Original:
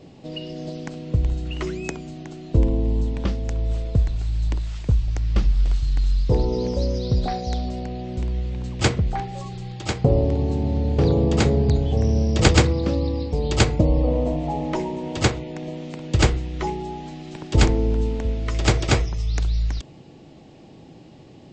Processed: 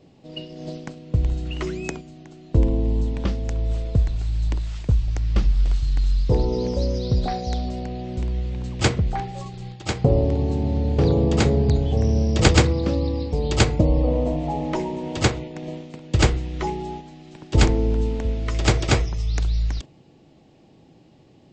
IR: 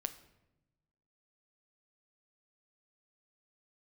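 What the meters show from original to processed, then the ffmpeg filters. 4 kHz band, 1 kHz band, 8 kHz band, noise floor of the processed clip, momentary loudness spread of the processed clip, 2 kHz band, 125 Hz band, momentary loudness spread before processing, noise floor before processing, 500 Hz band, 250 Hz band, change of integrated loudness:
0.0 dB, 0.0 dB, 0.0 dB, -53 dBFS, 14 LU, 0.0 dB, 0.0 dB, 14 LU, -46 dBFS, 0.0 dB, 0.0 dB, 0.0 dB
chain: -af "agate=range=-7dB:threshold=-32dB:ratio=16:detection=peak"

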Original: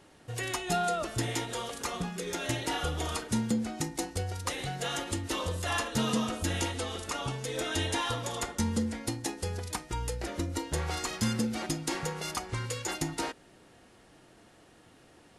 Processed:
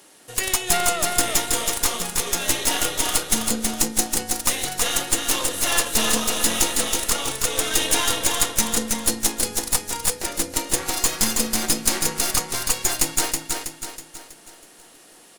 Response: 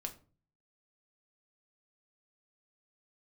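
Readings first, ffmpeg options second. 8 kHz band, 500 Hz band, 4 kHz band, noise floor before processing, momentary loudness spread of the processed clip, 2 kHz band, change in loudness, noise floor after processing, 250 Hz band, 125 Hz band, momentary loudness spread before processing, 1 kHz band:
+18.0 dB, +6.0 dB, +12.5 dB, -59 dBFS, 5 LU, +9.5 dB, +12.0 dB, -49 dBFS, +3.0 dB, -3.0 dB, 6 LU, +7.0 dB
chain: -filter_complex "[0:a]highpass=240,aemphasis=mode=production:type=75fm,aeval=exprs='0.376*(cos(1*acos(clip(val(0)/0.376,-1,1)))-cos(1*PI/2))+0.0531*(cos(8*acos(clip(val(0)/0.376,-1,1)))-cos(8*PI/2))':c=same,asplit=2[a][b];[b]aecho=0:1:323|646|969|1292|1615|1938:0.631|0.29|0.134|0.0614|0.0283|0.013[c];[a][c]amix=inputs=2:normalize=0,volume=4.5dB"

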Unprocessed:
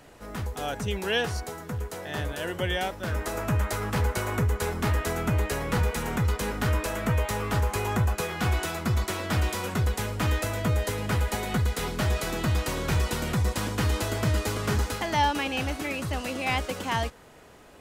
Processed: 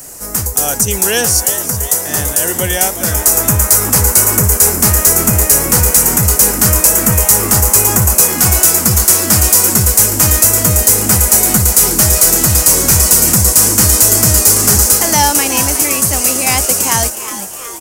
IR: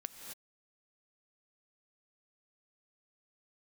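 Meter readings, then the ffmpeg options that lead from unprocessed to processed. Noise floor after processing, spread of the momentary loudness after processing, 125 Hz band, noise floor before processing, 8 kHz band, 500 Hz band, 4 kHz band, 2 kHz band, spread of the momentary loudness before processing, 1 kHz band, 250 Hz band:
-23 dBFS, 6 LU, +10.5 dB, -50 dBFS, +31.5 dB, +11.0 dB, +16.0 dB, +11.0 dB, 5 LU, +11.0 dB, +12.0 dB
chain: -filter_complex "[0:a]aexciter=amount=6.7:drive=9.2:freq=5.3k,asplit=7[a][b][c][d][e][f][g];[b]adelay=365,afreqshift=130,volume=-11.5dB[h];[c]adelay=730,afreqshift=260,volume=-16.4dB[i];[d]adelay=1095,afreqshift=390,volume=-21.3dB[j];[e]adelay=1460,afreqshift=520,volume=-26.1dB[k];[f]adelay=1825,afreqshift=650,volume=-31dB[l];[g]adelay=2190,afreqshift=780,volume=-35.9dB[m];[a][h][i][j][k][l][m]amix=inputs=7:normalize=0,apsyclip=12dB,volume=-1.5dB"

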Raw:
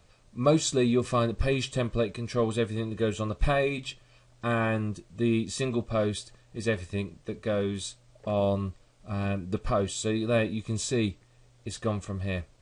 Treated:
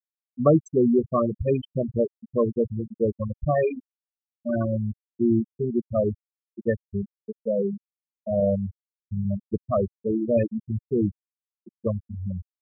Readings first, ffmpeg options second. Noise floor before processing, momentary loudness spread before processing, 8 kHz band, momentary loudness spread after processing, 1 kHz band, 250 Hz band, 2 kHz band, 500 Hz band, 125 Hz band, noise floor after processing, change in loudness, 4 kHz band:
-60 dBFS, 11 LU, under -20 dB, 12 LU, -0.5 dB, +4.0 dB, -9.5 dB, +4.0 dB, +1.5 dB, under -85 dBFS, +3.0 dB, under -20 dB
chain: -af "highpass=80,bandreject=f=60:t=h:w=6,bandreject=f=120:t=h:w=6,afftfilt=real='re*gte(hypot(re,im),0.178)':imag='im*gte(hypot(re,im),0.178)':win_size=1024:overlap=0.75,highshelf=f=2.3k:g=-11.5,volume=5.5dB"

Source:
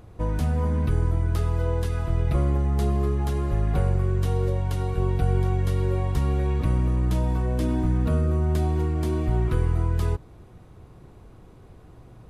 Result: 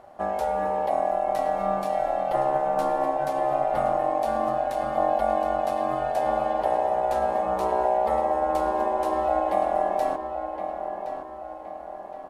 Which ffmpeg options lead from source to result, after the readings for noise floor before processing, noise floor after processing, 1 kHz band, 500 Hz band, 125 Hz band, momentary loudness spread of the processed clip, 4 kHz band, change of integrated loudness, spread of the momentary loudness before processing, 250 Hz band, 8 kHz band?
-49 dBFS, -39 dBFS, +14.0 dB, +7.5 dB, -23.0 dB, 8 LU, -2.0 dB, -0.5 dB, 3 LU, -6.5 dB, n/a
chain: -filter_complex "[0:a]asplit=2[a][b];[b]adelay=1068,lowpass=f=2.7k:p=1,volume=-8dB,asplit=2[c][d];[d]adelay=1068,lowpass=f=2.7k:p=1,volume=0.47,asplit=2[e][f];[f]adelay=1068,lowpass=f=2.7k:p=1,volume=0.47,asplit=2[g][h];[h]adelay=1068,lowpass=f=2.7k:p=1,volume=0.47,asplit=2[i][j];[j]adelay=1068,lowpass=f=2.7k:p=1,volume=0.47[k];[a][c][e][g][i][k]amix=inputs=6:normalize=0,aeval=exprs='val(0)*sin(2*PI*690*n/s)':c=same"

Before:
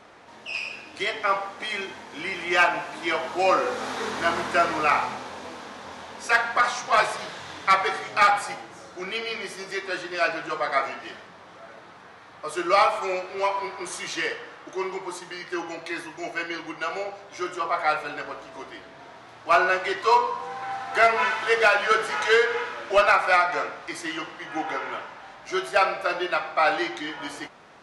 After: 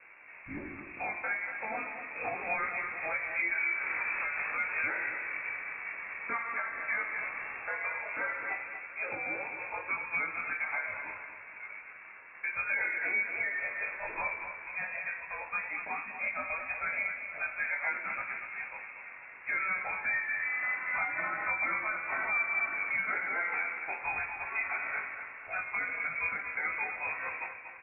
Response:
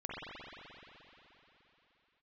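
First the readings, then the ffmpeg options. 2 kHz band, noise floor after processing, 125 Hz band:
-4.5 dB, -49 dBFS, under -10 dB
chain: -af "equalizer=f=520:w=2.6:g=9,bandreject=f=380:w=12,acompressor=threshold=-21dB:ratio=5,alimiter=limit=-20.5dB:level=0:latency=1:release=337,aeval=exprs='sgn(val(0))*max(abs(val(0))-0.00188,0)':c=same,flanger=delay=19:depth=3.4:speed=0.44,aecho=1:1:237|474|711|948|1185:0.355|0.16|0.0718|0.0323|0.0145,lowpass=f=2.4k:t=q:w=0.5098,lowpass=f=2.4k:t=q:w=0.6013,lowpass=f=2.4k:t=q:w=0.9,lowpass=f=2.4k:t=q:w=2.563,afreqshift=-2800"

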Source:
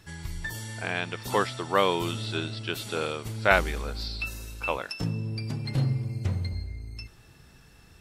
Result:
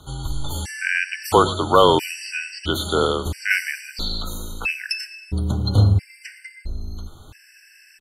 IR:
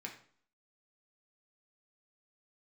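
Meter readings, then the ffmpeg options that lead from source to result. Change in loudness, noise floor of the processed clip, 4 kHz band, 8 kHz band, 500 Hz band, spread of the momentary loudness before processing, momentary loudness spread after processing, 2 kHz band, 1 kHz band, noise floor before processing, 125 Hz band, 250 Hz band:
+8.0 dB, -51 dBFS, +8.5 dB, +8.5 dB, +8.0 dB, 12 LU, 18 LU, +5.5 dB, +8.0 dB, -55 dBFS, +7.0 dB, +7.0 dB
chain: -filter_complex "[0:a]apsyclip=14.5dB,bandreject=f=50:t=h:w=6,bandreject=f=100:t=h:w=6,bandreject=f=150:t=h:w=6,bandreject=f=200:t=h:w=6,bandreject=f=250:t=h:w=6,bandreject=f=300:t=h:w=6,bandreject=f=350:t=h:w=6,bandreject=f=400:t=h:w=6,afreqshift=-31,asplit=2[a][b];[b]adelay=111,lowpass=f=4.5k:p=1,volume=-16.5dB,asplit=2[c][d];[d]adelay=111,lowpass=f=4.5k:p=1,volume=0.23[e];[c][e]amix=inputs=2:normalize=0[f];[a][f]amix=inputs=2:normalize=0,afftfilt=real='re*gt(sin(2*PI*0.75*pts/sr)*(1-2*mod(floor(b*sr/1024/1500),2)),0)':imag='im*gt(sin(2*PI*0.75*pts/sr)*(1-2*mod(floor(b*sr/1024/1500),2)),0)':win_size=1024:overlap=0.75,volume=-3dB"

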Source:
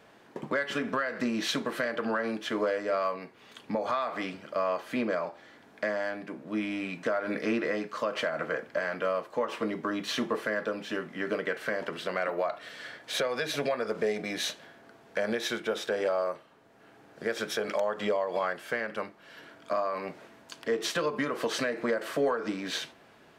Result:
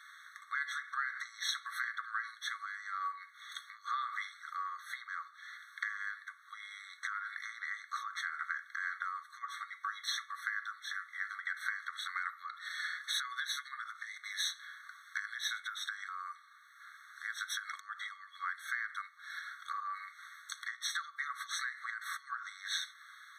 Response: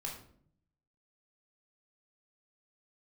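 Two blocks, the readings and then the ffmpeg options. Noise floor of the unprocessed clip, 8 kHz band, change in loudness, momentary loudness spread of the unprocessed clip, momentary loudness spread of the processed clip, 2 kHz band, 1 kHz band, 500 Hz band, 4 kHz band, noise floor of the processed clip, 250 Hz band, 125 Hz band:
-57 dBFS, -2.0 dB, -8.0 dB, 8 LU, 10 LU, -2.5 dB, -6.0 dB, under -40 dB, -3.5 dB, -59 dBFS, under -40 dB, under -40 dB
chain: -af "acompressor=threshold=-44dB:ratio=2.5,tremolo=f=170:d=0.261,afftfilt=real='re*eq(mod(floor(b*sr/1024/1100),2),1)':imag='im*eq(mod(floor(b*sr/1024/1100),2),1)':win_size=1024:overlap=0.75,volume=9.5dB"

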